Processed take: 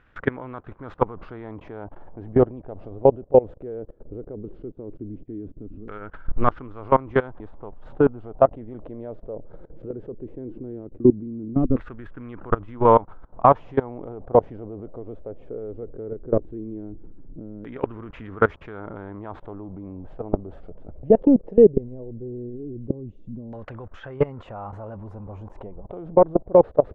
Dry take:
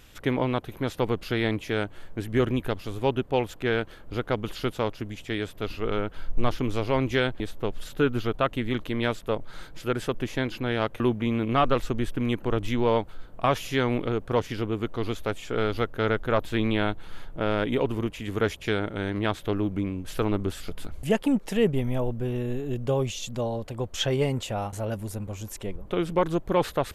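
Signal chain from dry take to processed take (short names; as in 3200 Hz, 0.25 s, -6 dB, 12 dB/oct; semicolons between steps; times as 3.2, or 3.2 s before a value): level quantiser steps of 22 dB; LFO low-pass saw down 0.17 Hz 260–1600 Hz; gain +7 dB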